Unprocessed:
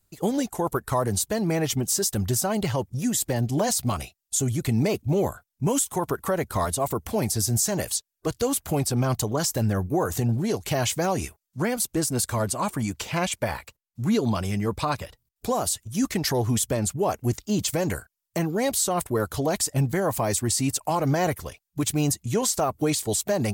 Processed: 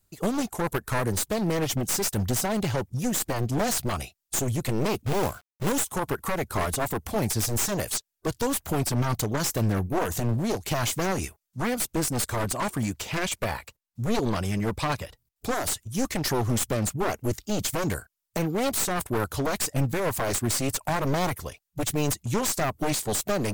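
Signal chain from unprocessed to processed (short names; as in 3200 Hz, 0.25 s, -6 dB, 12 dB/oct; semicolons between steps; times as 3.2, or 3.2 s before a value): one-sided fold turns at -24.5 dBFS; 5.06–5.72 companded quantiser 4-bit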